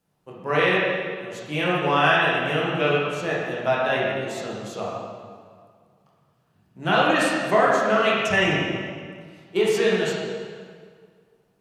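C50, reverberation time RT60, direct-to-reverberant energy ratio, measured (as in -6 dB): -1.5 dB, 1.9 s, -6.5 dB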